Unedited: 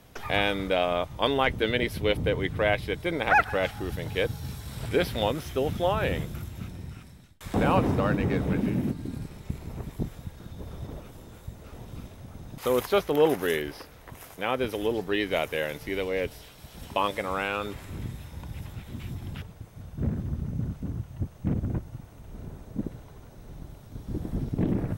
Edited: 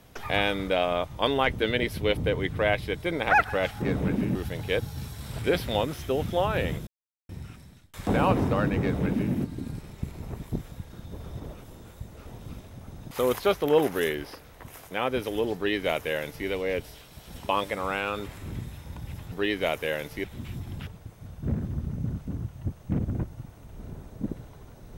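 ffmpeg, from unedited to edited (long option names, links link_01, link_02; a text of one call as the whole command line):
ffmpeg -i in.wav -filter_complex "[0:a]asplit=7[link_01][link_02][link_03][link_04][link_05][link_06][link_07];[link_01]atrim=end=3.822[link_08];[link_02]atrim=start=8.268:end=8.802[link_09];[link_03]atrim=start=3.818:end=6.34,asetpts=PTS-STARTPTS,afade=type=out:start_time=2.518:duration=0.004:curve=hsin[link_10];[link_04]atrim=start=6.34:end=6.76,asetpts=PTS-STARTPTS,volume=0[link_11];[link_05]atrim=start=6.76:end=18.792,asetpts=PTS-STARTPTS,afade=type=in:duration=0.004:curve=hsin[link_12];[link_06]atrim=start=15.018:end=15.942[link_13];[link_07]atrim=start=18.788[link_14];[link_08][link_09]acrossfade=duration=0.004:curve1=hsin:curve2=hsin[link_15];[link_10][link_11][link_12]concat=n=3:v=0:a=1[link_16];[link_15][link_16]acrossfade=duration=0.004:curve1=hsin:curve2=hsin[link_17];[link_17][link_13]acrossfade=duration=0.004:curve1=hsin:curve2=hsin[link_18];[link_18][link_14]acrossfade=duration=0.004:curve1=hsin:curve2=hsin" out.wav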